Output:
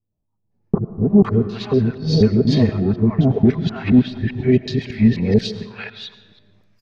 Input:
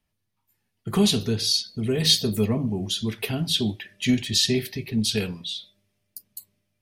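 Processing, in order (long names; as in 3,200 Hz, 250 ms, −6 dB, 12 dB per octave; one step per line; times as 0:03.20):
reversed piece by piece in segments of 245 ms
floating-point word with a short mantissa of 4 bits
parametric band 3,200 Hz −11.5 dB 0.68 octaves
automatic gain control gain up to 16 dB
treble cut that deepens with the level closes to 1,800 Hz, closed at −10.5 dBFS
high-frequency loss of the air 190 metres
multiband delay without the direct sound lows, highs 510 ms, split 850 Hz
on a send at −13.5 dB: convolution reverb RT60 1.4 s, pre-delay 65 ms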